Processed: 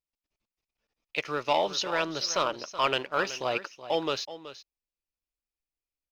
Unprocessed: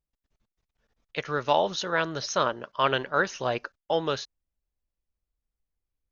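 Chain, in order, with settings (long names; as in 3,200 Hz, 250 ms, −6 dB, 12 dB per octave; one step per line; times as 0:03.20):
low-shelf EQ 260 Hz −9.5 dB
leveller curve on the samples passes 1
thirty-one-band graphic EQ 315 Hz +5 dB, 1,600 Hz −6 dB, 2,500 Hz +8 dB, 5,000 Hz +6 dB
single-tap delay 376 ms −14 dB
level −4 dB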